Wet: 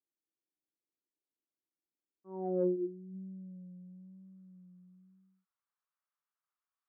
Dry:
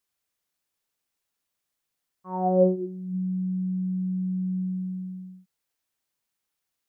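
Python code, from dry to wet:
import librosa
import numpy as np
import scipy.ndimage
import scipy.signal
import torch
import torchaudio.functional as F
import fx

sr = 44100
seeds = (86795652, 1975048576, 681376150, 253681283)

y = 10.0 ** (-12.0 / 20.0) * np.tanh(x / 10.0 ** (-12.0 / 20.0))
y = fx.filter_sweep_bandpass(y, sr, from_hz=320.0, to_hz=1200.0, start_s=3.0, end_s=4.4, q=3.9)
y = fx.vibrato(y, sr, rate_hz=1.0, depth_cents=43.0)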